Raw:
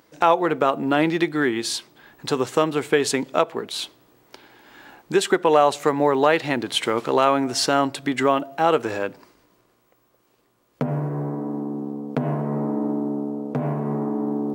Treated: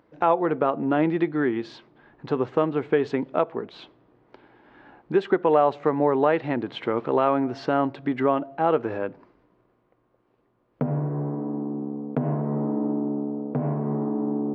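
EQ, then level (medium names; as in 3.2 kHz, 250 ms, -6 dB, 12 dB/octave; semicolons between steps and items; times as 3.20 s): distance through air 80 m; tape spacing loss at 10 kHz 38 dB; 0.0 dB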